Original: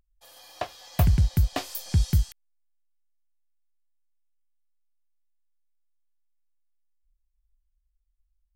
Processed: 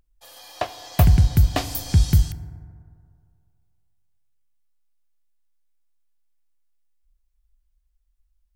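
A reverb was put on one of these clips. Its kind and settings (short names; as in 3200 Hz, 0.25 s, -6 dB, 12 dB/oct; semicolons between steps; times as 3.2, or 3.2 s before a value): FDN reverb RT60 2.3 s, low-frequency decay 0.85×, high-frequency decay 0.3×, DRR 13 dB; gain +5.5 dB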